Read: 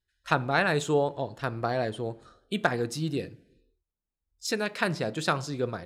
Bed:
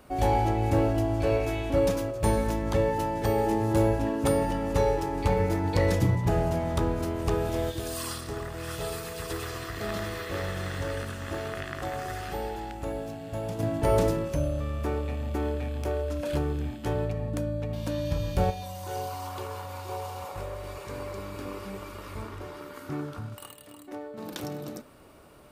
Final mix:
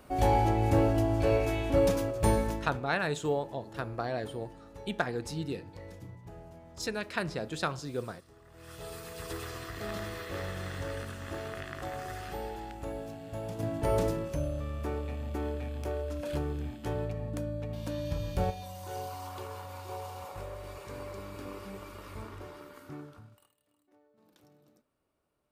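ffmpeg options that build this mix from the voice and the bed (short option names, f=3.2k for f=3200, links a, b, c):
-filter_complex "[0:a]adelay=2350,volume=-5.5dB[a];[1:a]volume=17dB,afade=t=out:st=2.32:d=0.48:silence=0.0794328,afade=t=in:st=8.43:d=0.84:silence=0.125893,afade=t=out:st=22.43:d=1.07:silence=0.0794328[b];[a][b]amix=inputs=2:normalize=0"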